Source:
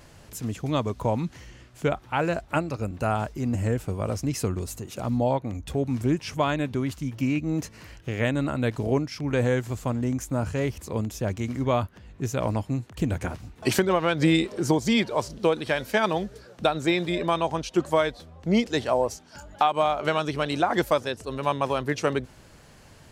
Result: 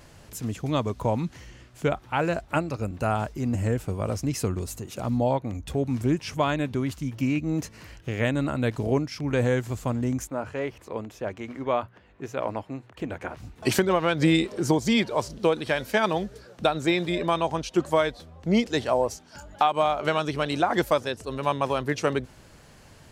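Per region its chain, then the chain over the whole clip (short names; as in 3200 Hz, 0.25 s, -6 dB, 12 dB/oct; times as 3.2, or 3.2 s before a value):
10.27–13.37 tone controls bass -13 dB, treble -14 dB + notches 60/120/180 Hz
whole clip: dry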